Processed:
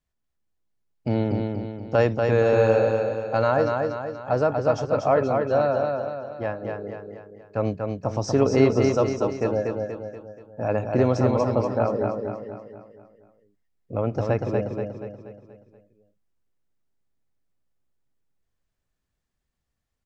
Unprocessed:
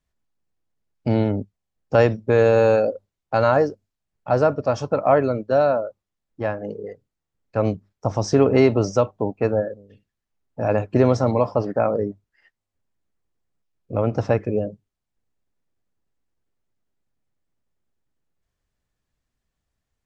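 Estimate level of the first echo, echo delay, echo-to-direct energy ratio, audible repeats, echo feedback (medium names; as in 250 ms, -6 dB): -4.0 dB, 239 ms, -3.0 dB, 5, 48%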